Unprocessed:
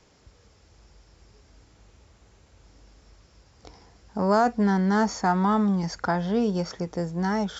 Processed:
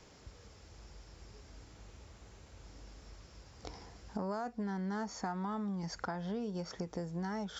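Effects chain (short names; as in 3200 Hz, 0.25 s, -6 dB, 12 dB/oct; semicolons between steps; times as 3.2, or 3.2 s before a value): compressor 6:1, threshold -38 dBFS, peak gain reduction 19.5 dB; gain +1 dB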